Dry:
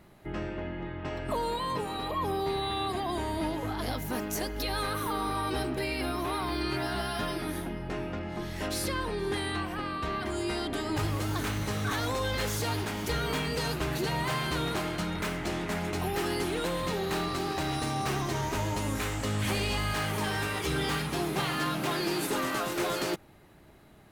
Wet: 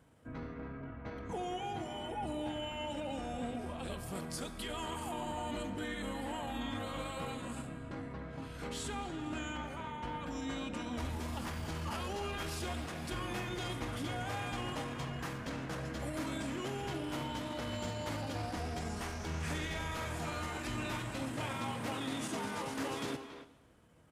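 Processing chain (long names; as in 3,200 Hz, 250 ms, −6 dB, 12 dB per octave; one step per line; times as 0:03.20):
high-pass filter 55 Hz 24 dB per octave
pitch shifter −4.5 semitones
far-end echo of a speakerphone 280 ms, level −9 dB
on a send at −12.5 dB: convolution reverb RT60 1.2 s, pre-delay 18 ms
on the sum: level −8 dB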